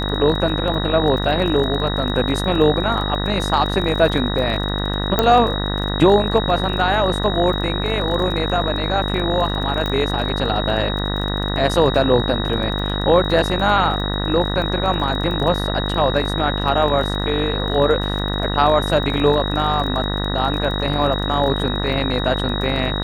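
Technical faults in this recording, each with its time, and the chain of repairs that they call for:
buzz 50 Hz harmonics 39 -23 dBFS
crackle 27 per s -26 dBFS
whine 3.8 kHz -26 dBFS
5.19 s: pop -2 dBFS
9.86 s: pop -11 dBFS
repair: de-click; band-stop 3.8 kHz, Q 30; de-hum 50 Hz, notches 39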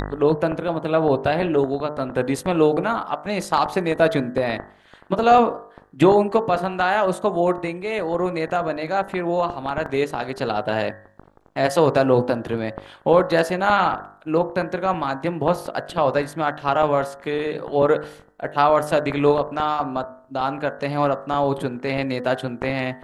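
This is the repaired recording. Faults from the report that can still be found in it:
9.86 s: pop

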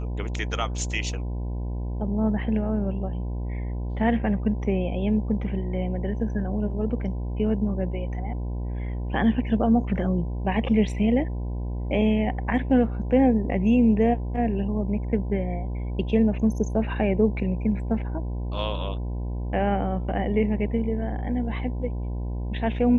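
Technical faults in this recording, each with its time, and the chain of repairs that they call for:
buzz 60 Hz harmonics 17 -29 dBFS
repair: de-hum 60 Hz, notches 17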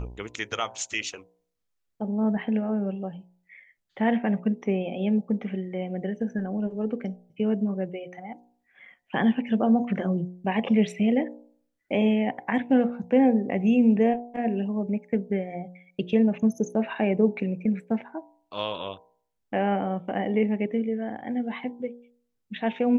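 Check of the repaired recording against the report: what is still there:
nothing left

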